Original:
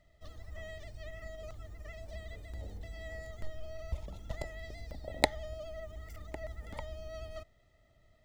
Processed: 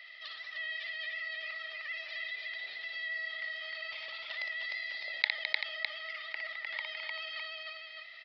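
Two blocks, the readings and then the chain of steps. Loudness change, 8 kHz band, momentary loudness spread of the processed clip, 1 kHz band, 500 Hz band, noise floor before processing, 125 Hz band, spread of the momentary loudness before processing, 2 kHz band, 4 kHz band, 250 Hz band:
+5.5 dB, under -15 dB, 7 LU, -5.5 dB, -10.0 dB, -67 dBFS, under -40 dB, 9 LU, +11.5 dB, +8.5 dB, under -25 dB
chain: resonant high-pass 2200 Hz, resonance Q 2; tapped delay 59/211/304/387/607 ms -8/-14.5/-4/-17.5/-12 dB; downsampling 11025 Hz; fast leveller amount 50%; gain -3 dB

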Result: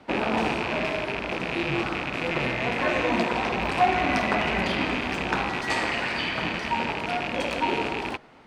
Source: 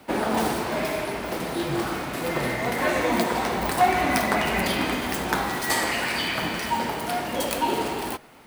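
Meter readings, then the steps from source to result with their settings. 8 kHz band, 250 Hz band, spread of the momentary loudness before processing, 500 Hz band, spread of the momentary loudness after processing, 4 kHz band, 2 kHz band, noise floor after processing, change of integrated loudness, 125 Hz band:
-12.0 dB, -1.5 dB, 7 LU, -1.5 dB, 5 LU, -1.5 dB, +0.5 dB, -34 dBFS, -1.0 dB, -0.5 dB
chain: rattling part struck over -36 dBFS, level -15 dBFS; air absorption 120 m; gain -1 dB

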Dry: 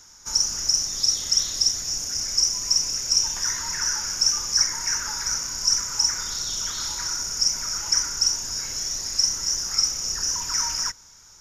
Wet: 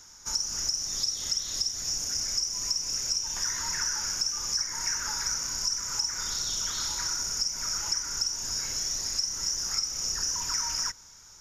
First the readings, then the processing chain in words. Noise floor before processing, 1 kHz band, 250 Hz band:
-50 dBFS, -4.0 dB, -4.0 dB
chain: compressor 10:1, threshold -24 dBFS, peak gain reduction 10 dB; gain -1.5 dB

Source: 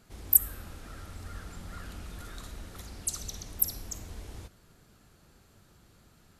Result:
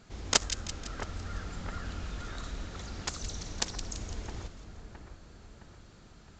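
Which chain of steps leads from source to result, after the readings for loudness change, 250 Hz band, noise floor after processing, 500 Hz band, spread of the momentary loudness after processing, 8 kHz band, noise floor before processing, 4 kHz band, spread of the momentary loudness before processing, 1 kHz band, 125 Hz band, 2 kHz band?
-8.0 dB, +5.0 dB, -54 dBFS, +8.0 dB, 25 LU, -3.0 dB, -61 dBFS, +11.0 dB, 23 LU, +8.5 dB, +3.5 dB, +9.5 dB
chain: self-modulated delay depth 0.81 ms; dynamic EQ 2700 Hz, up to -4 dB, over -50 dBFS, Q 0.92; split-band echo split 2000 Hz, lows 0.665 s, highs 0.168 s, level -9.5 dB; gain +3.5 dB; A-law 128 kbps 16000 Hz

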